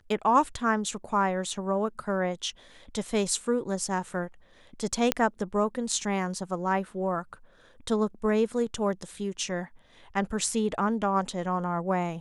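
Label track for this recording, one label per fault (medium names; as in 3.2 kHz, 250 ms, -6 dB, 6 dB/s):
5.120000	5.120000	pop -6 dBFS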